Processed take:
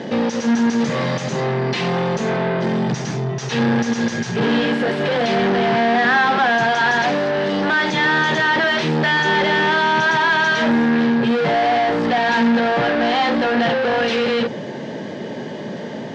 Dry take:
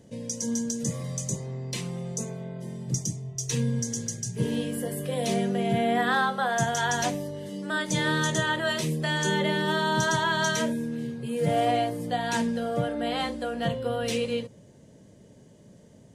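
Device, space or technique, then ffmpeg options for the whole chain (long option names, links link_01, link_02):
overdrive pedal into a guitar cabinet: -filter_complex "[0:a]asplit=2[link_01][link_02];[link_02]highpass=frequency=720:poles=1,volume=37dB,asoftclip=type=tanh:threshold=-14dB[link_03];[link_01][link_03]amix=inputs=2:normalize=0,lowpass=frequency=4800:poles=1,volume=-6dB,highpass=81,equalizer=frequency=86:width_type=q:width=4:gain=-9,equalizer=frequency=150:width_type=q:width=4:gain=3,equalizer=frequency=230:width_type=q:width=4:gain=6,equalizer=frequency=360:width_type=q:width=4:gain=5,equalizer=frequency=830:width_type=q:width=4:gain=6,equalizer=frequency=1700:width_type=q:width=4:gain=6,lowpass=frequency=4600:width=0.5412,lowpass=frequency=4600:width=1.3066"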